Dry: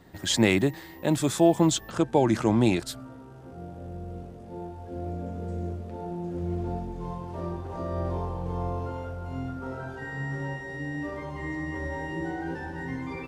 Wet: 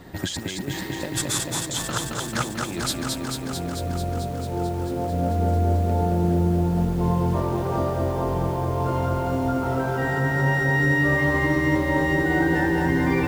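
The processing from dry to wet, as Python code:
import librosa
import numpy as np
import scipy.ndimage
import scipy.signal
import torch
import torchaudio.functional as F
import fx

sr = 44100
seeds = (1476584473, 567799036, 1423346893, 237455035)

y = fx.over_compress(x, sr, threshold_db=-33.0, ratio=-1.0)
y = fx.echo_crushed(y, sr, ms=221, feedback_pct=80, bits=9, wet_db=-3)
y = F.gain(torch.from_numpy(y), 6.0).numpy()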